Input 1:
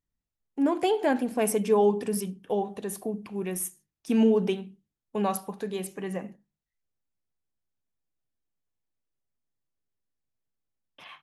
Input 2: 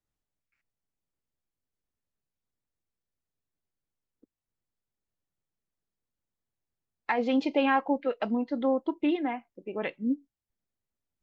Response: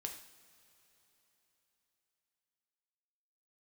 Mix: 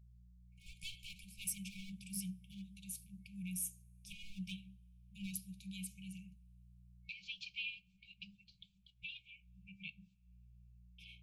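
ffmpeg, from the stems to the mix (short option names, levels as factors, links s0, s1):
-filter_complex "[0:a]aeval=exprs='val(0)+0.00251*(sin(2*PI*60*n/s)+sin(2*PI*2*60*n/s)/2+sin(2*PI*3*60*n/s)/3+sin(2*PI*4*60*n/s)/4+sin(2*PI*5*60*n/s)/5)':c=same,volume=12.6,asoftclip=hard,volume=0.0794,flanger=delay=2.2:depth=4.4:regen=-66:speed=0.66:shape=triangular,volume=0.631,asplit=2[s0][s1];[s1]volume=0.119[s2];[1:a]volume=0.501,asplit=3[s3][s4][s5];[s4]volume=0.0944[s6];[s5]apad=whole_len=494854[s7];[s0][s7]sidechaincompress=threshold=0.00224:ratio=6:attack=47:release=113[s8];[2:a]atrim=start_sample=2205[s9];[s2][s6]amix=inputs=2:normalize=0[s10];[s10][s9]afir=irnorm=-1:irlink=0[s11];[s8][s3][s11]amix=inputs=3:normalize=0,afftfilt=real='re*(1-between(b*sr/4096,200,2200))':imag='im*(1-between(b*sr/4096,200,2200))':win_size=4096:overlap=0.75"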